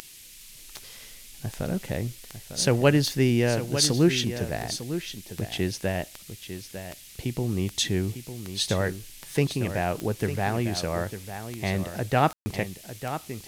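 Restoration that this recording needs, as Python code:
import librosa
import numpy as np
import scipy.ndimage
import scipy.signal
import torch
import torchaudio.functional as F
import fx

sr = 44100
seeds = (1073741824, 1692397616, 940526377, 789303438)

y = fx.fix_declick_ar(x, sr, threshold=10.0)
y = fx.fix_ambience(y, sr, seeds[0], print_start_s=0.01, print_end_s=0.51, start_s=12.33, end_s=12.46)
y = fx.noise_reduce(y, sr, print_start_s=0.01, print_end_s=0.51, reduce_db=24.0)
y = fx.fix_echo_inverse(y, sr, delay_ms=901, level_db=-10.5)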